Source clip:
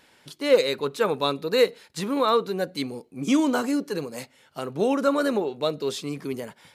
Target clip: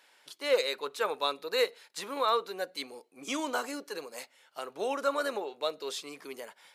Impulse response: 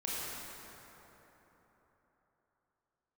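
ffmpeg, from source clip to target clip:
-af "highpass=580,volume=-4dB"

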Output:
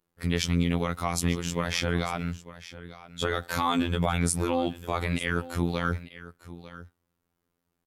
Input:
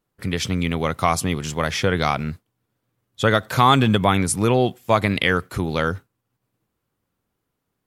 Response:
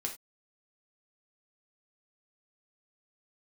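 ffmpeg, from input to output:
-filter_complex "[0:a]alimiter=limit=-12.5dB:level=0:latency=1:release=50,asplit=2[link_01][link_02];[link_02]aecho=0:1:899:0.158[link_03];[link_01][link_03]amix=inputs=2:normalize=0,afftfilt=real='hypot(re,im)*cos(PI*b)':imag='0':win_size=2048:overlap=0.75"

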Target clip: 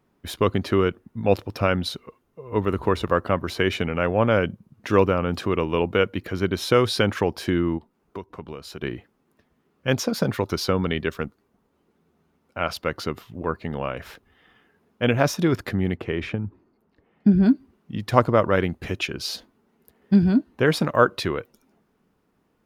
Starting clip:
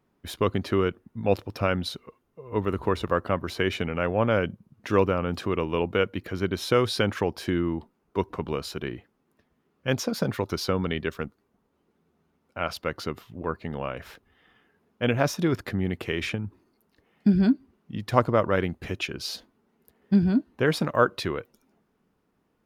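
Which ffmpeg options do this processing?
ffmpeg -i in.wav -filter_complex "[0:a]asplit=3[link_01][link_02][link_03];[link_01]afade=type=out:start_time=7.77:duration=0.02[link_04];[link_02]acompressor=threshold=-37dB:ratio=5,afade=type=in:start_time=7.77:duration=0.02,afade=type=out:start_time=8.81:duration=0.02[link_05];[link_03]afade=type=in:start_time=8.81:duration=0.02[link_06];[link_04][link_05][link_06]amix=inputs=3:normalize=0,asplit=3[link_07][link_08][link_09];[link_07]afade=type=out:start_time=15.93:duration=0.02[link_10];[link_08]lowpass=frequency=1300:poles=1,afade=type=in:start_time=15.93:duration=0.02,afade=type=out:start_time=17.45:duration=0.02[link_11];[link_09]afade=type=in:start_time=17.45:duration=0.02[link_12];[link_10][link_11][link_12]amix=inputs=3:normalize=0,volume=3.5dB" out.wav

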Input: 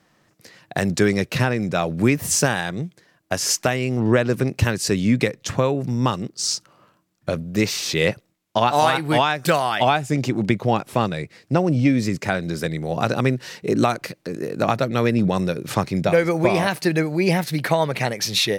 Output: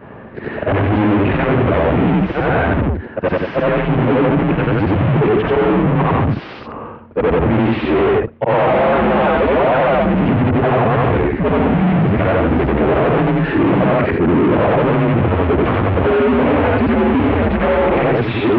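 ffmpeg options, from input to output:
ffmpeg -i in.wav -filter_complex "[0:a]afftfilt=real='re':imag='-im':win_size=8192:overlap=0.75,tiltshelf=frequency=730:gain=8,acompressor=threshold=-19dB:ratio=10,asplit=2[link_01][link_02];[link_02]highpass=frequency=720:poles=1,volume=35dB,asoftclip=type=tanh:threshold=-12dB[link_03];[link_01][link_03]amix=inputs=2:normalize=0,lowpass=frequency=1000:poles=1,volume=-6dB,aeval=exprs='0.126*(abs(mod(val(0)/0.126+3,4)-2)-1)':channel_layout=same,highpass=frequency=190:width_type=q:width=0.5412,highpass=frequency=190:width_type=q:width=1.307,lowpass=frequency=3100:width_type=q:width=0.5176,lowpass=frequency=3100:width_type=q:width=0.7071,lowpass=frequency=3100:width_type=q:width=1.932,afreqshift=-95,volume=8.5dB" out.wav

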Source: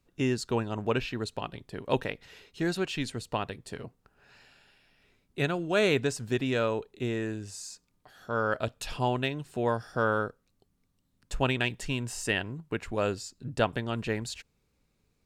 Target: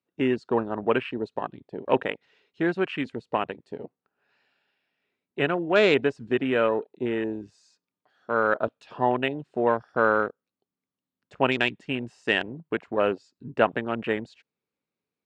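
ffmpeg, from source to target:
ffmpeg -i in.wav -af "highpass=230,lowpass=3800,afwtdn=0.0112,volume=6dB" out.wav

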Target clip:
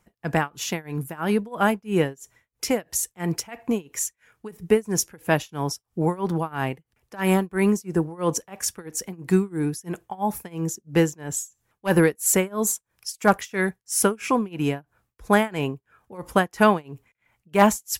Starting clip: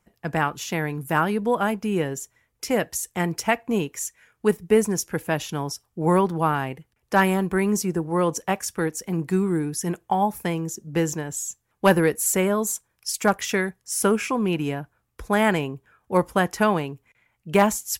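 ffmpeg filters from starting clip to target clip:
ffmpeg -i in.wav -af "tremolo=f=3:d=0.96,volume=4dB" out.wav

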